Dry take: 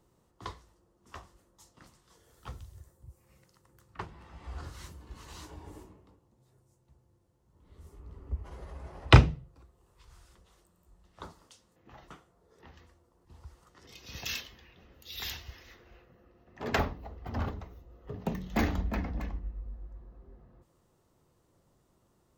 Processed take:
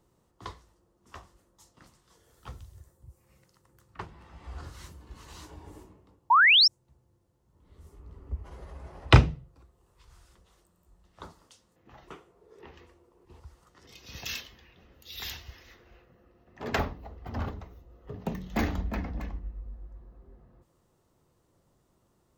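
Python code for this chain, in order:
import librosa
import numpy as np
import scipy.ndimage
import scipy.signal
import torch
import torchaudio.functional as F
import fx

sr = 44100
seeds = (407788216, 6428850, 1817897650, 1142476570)

y = fx.spec_paint(x, sr, seeds[0], shape='rise', start_s=6.3, length_s=0.38, low_hz=870.0, high_hz=5700.0, level_db=-18.0)
y = fx.graphic_eq_15(y, sr, hz=(400, 1000, 2500), db=(12, 4, 7), at=(12.07, 13.4))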